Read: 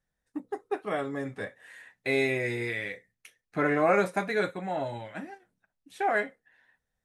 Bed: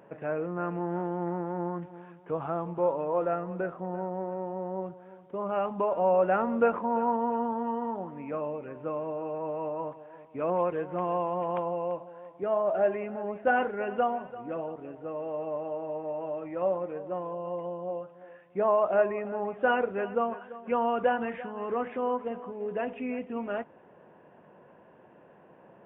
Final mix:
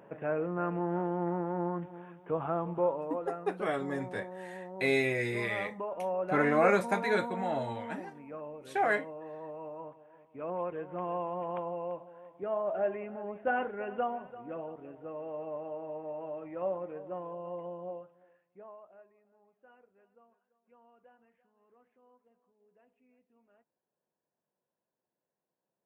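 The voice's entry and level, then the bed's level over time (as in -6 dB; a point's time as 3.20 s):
2.75 s, -1.5 dB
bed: 2.77 s -0.5 dB
3.22 s -9.5 dB
10.27 s -9.5 dB
11.07 s -5.5 dB
17.87 s -5.5 dB
19.10 s -35.5 dB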